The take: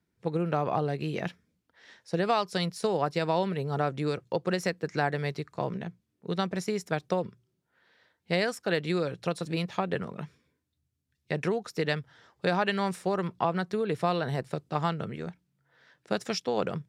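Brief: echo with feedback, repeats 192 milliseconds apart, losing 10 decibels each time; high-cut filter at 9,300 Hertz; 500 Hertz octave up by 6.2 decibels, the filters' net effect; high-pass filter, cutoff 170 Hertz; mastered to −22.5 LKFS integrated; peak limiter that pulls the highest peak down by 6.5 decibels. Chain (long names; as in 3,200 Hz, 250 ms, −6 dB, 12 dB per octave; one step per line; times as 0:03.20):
high-pass filter 170 Hz
low-pass filter 9,300 Hz
parametric band 500 Hz +7.5 dB
brickwall limiter −16.5 dBFS
repeating echo 192 ms, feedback 32%, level −10 dB
level +6 dB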